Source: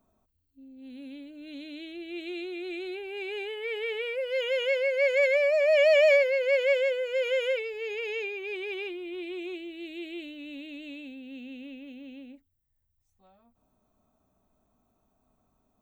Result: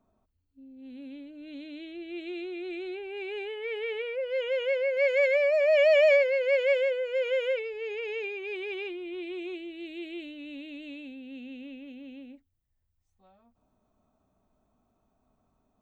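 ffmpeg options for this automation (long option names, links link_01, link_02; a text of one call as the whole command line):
ffmpeg -i in.wav -af "asetnsamples=nb_out_samples=441:pad=0,asendcmd='4.02 lowpass f 1800;4.97 lowpass f 3700;6.85 lowpass f 2500;8.24 lowpass f 4700',lowpass=frequency=2700:poles=1" out.wav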